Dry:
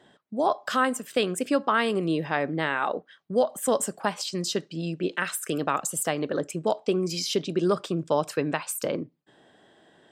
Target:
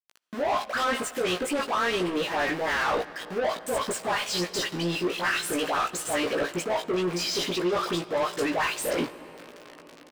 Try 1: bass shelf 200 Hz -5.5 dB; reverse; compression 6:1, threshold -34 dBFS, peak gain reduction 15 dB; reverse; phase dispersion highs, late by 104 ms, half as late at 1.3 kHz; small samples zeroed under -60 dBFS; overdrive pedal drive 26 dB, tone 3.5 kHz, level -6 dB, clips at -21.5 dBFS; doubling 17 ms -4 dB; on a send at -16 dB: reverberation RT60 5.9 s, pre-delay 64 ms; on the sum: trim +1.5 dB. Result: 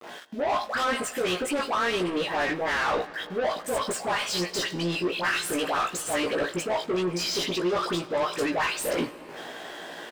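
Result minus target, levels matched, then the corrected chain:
small samples zeroed: distortion -12 dB
bass shelf 200 Hz -5.5 dB; reverse; compression 6:1, threshold -34 dBFS, peak gain reduction 15 dB; reverse; phase dispersion highs, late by 104 ms, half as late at 1.3 kHz; small samples zeroed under -50 dBFS; overdrive pedal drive 26 dB, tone 3.5 kHz, level -6 dB, clips at -21.5 dBFS; doubling 17 ms -4 dB; on a send at -16 dB: reverberation RT60 5.9 s, pre-delay 64 ms; on the sum: trim +1.5 dB

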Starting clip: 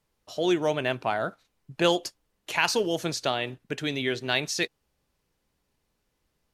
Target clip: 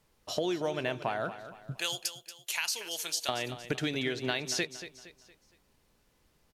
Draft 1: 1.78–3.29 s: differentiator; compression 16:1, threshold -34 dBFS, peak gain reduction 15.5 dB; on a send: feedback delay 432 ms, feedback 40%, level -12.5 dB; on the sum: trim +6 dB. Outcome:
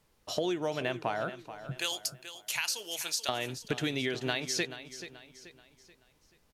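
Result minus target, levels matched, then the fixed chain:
echo 200 ms late
1.78–3.29 s: differentiator; compression 16:1, threshold -34 dBFS, peak gain reduction 15.5 dB; on a send: feedback delay 232 ms, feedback 40%, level -12.5 dB; on the sum: trim +6 dB

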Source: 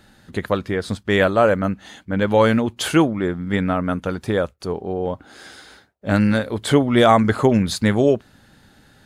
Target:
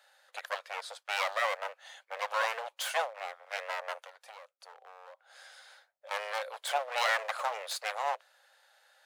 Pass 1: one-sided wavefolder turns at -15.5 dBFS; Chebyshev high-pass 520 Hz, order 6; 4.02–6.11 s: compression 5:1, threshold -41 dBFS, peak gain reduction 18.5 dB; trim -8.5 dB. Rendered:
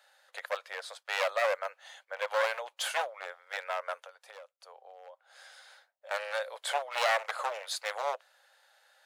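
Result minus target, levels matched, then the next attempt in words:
one-sided wavefolder: distortion -9 dB
one-sided wavefolder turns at -23 dBFS; Chebyshev high-pass 520 Hz, order 6; 4.02–6.11 s: compression 5:1, threshold -41 dBFS, peak gain reduction 17 dB; trim -8.5 dB

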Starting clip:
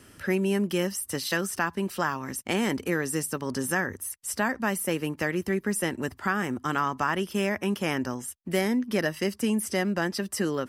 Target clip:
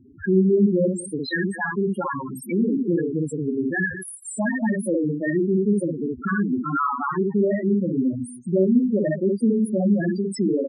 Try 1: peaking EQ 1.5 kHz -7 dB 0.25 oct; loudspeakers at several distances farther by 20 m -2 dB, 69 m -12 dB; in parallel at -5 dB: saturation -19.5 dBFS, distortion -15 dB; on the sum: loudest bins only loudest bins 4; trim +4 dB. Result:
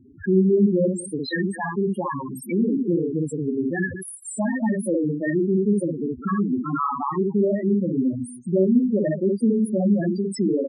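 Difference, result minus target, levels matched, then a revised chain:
2 kHz band -4.5 dB
loudspeakers at several distances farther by 20 m -2 dB, 69 m -12 dB; in parallel at -5 dB: saturation -19.5 dBFS, distortion -15 dB; on the sum: loudest bins only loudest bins 4; trim +4 dB

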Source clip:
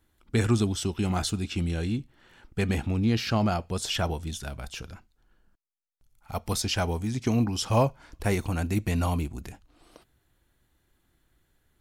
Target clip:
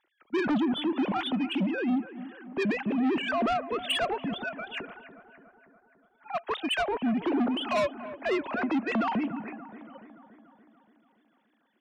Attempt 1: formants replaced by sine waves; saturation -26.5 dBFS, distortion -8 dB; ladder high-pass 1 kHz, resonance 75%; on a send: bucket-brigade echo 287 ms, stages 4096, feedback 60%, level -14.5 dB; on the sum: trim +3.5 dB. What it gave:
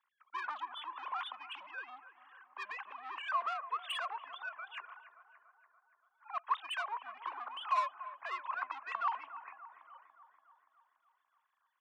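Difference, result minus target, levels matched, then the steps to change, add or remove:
1 kHz band +7.0 dB
remove: ladder high-pass 1 kHz, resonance 75%

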